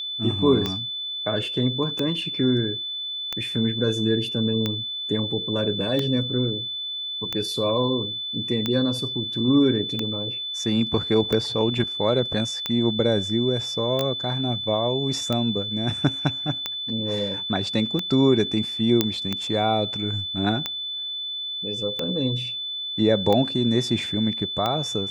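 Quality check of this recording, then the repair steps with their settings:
tick 45 rpm -11 dBFS
whine 3.5 kHz -28 dBFS
14.01 s: pop -11 dBFS
19.01 s: pop -4 dBFS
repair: de-click; band-stop 3.5 kHz, Q 30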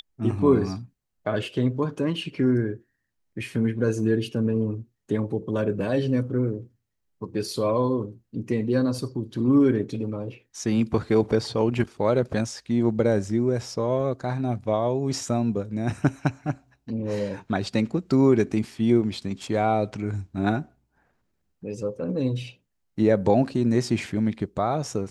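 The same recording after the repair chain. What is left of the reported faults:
14.01 s: pop

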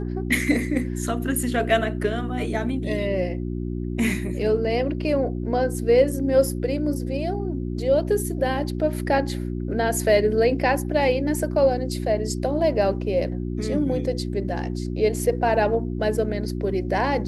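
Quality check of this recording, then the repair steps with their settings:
hum 60 Hz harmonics 6 -28 dBFS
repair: de-hum 60 Hz, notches 6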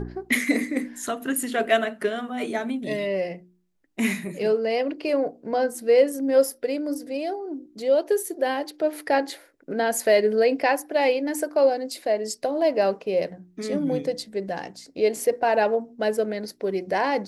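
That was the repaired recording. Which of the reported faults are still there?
nothing left

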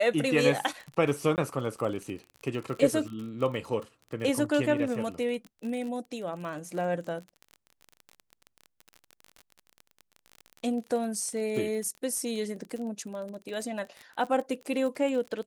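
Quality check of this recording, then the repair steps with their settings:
crackle 34 per s -35 dBFS
1.36–1.38 s: dropout 18 ms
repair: de-click; interpolate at 1.36 s, 18 ms

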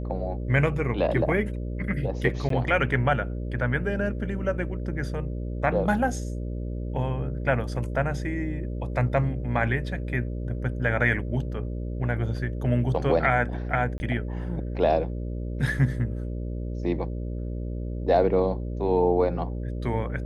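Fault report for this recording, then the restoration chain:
buzz 60 Hz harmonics 10 -31 dBFS
2.49–2.50 s: dropout 13 ms
13.98–14.00 s: dropout 20 ms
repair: de-hum 60 Hz, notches 10; interpolate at 2.49 s, 13 ms; interpolate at 13.98 s, 20 ms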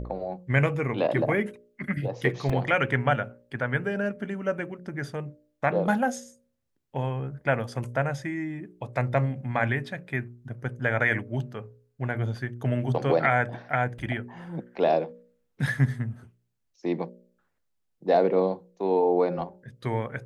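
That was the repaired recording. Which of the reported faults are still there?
nothing left

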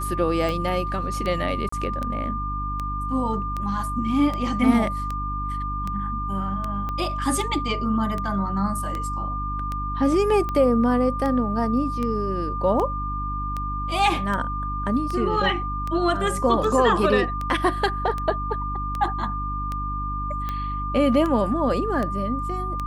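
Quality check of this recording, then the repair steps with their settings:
hum 50 Hz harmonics 6 -30 dBFS
tick 78 rpm
whine 1.2 kHz -28 dBFS
1.69–1.72 s: dropout 34 ms
6.89 s: pop -18 dBFS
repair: de-click; de-hum 50 Hz, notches 6; band-stop 1.2 kHz, Q 30; interpolate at 1.69 s, 34 ms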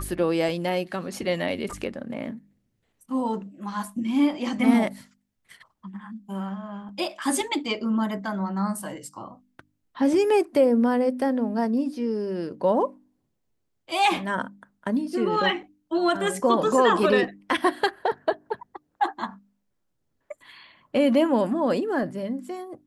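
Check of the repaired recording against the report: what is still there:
6.89 s: pop

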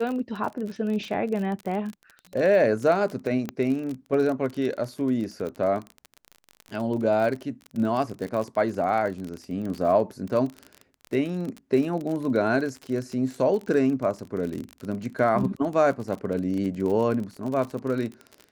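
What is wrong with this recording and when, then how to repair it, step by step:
crackle 38 per s -30 dBFS
3.49 s: pop -16 dBFS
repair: de-click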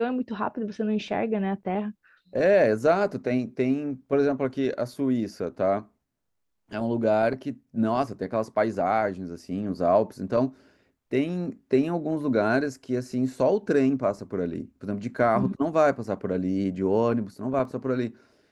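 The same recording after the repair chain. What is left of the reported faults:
nothing left

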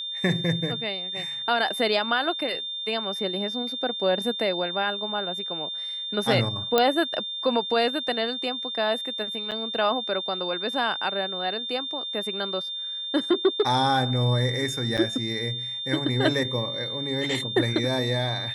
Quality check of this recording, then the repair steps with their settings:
whine 3.6 kHz -30 dBFS
6.78 s: pop -6 dBFS
9.51–9.52 s: dropout 7.6 ms
14.97–14.98 s: dropout 7 ms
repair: de-click; band-stop 3.6 kHz, Q 30; interpolate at 9.51 s, 7.6 ms; interpolate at 14.97 s, 7 ms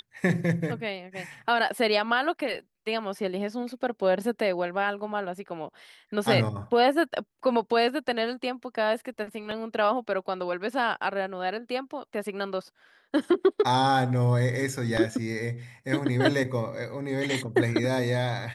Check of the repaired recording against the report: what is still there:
nothing left

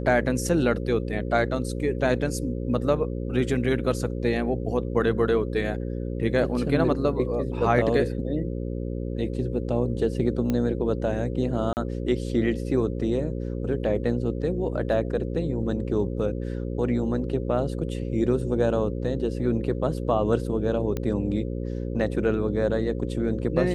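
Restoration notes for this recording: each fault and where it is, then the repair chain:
buzz 60 Hz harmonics 9 -30 dBFS
10.50 s: pop -14 dBFS
11.73–11.77 s: dropout 39 ms
20.97 s: pop -16 dBFS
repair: de-click; de-hum 60 Hz, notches 9; interpolate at 11.73 s, 39 ms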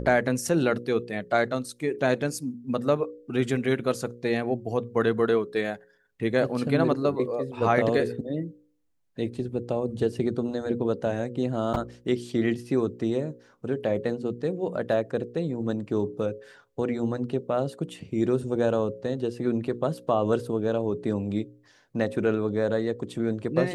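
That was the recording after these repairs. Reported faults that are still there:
nothing left

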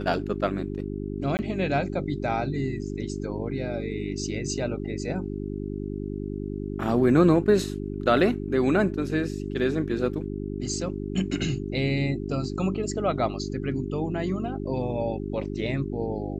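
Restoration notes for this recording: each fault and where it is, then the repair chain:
hum 50 Hz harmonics 8 -32 dBFS
1.37–1.39 s: dropout 19 ms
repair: de-hum 50 Hz, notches 8; interpolate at 1.37 s, 19 ms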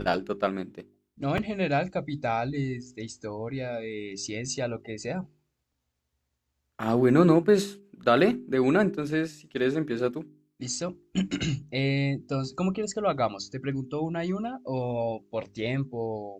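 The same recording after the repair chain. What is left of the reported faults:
nothing left

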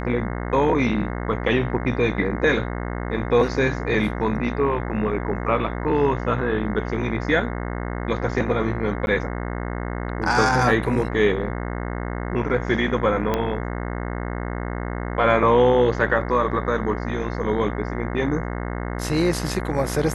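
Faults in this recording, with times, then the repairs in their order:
buzz 60 Hz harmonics 36 -28 dBFS
9.06–9.07 s: dropout 11 ms
13.34 s: pop -9 dBFS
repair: de-click; de-hum 60 Hz, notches 36; interpolate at 9.06 s, 11 ms

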